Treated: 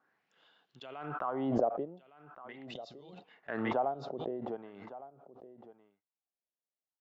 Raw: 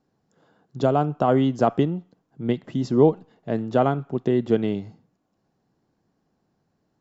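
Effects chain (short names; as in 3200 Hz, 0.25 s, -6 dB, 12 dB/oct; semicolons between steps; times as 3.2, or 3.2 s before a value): wah 0.42 Hz 560–3300 Hz, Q 3.2; gate -53 dBFS, range -20 dB; high shelf 4600 Hz -9 dB; spectral gain 2.65–3.24, 230–3500 Hz -12 dB; on a send: echo 1.16 s -16 dB; on the sum: backwards sustainer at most 34 dB/s; gain -7 dB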